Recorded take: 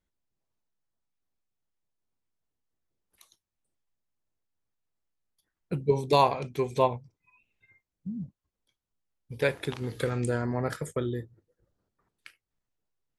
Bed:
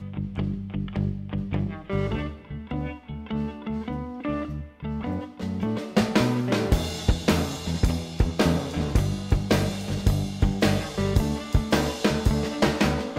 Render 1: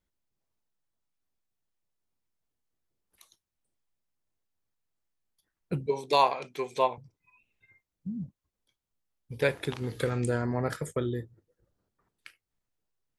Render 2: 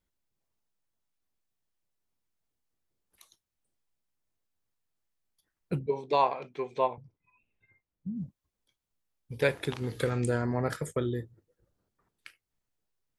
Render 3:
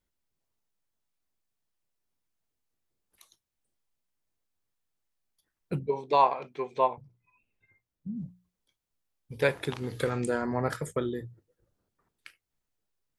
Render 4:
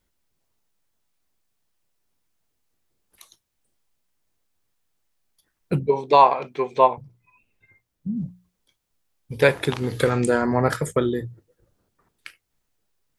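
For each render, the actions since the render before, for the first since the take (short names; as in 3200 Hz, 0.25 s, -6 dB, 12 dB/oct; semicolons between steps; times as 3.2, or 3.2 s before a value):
5.86–6.98 weighting filter A
5.79–8.17 tape spacing loss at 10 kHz 24 dB
notches 60/120/180 Hz; dynamic EQ 1000 Hz, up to +4 dB, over -40 dBFS, Q 1.3
gain +9 dB; limiter -2 dBFS, peak gain reduction 2 dB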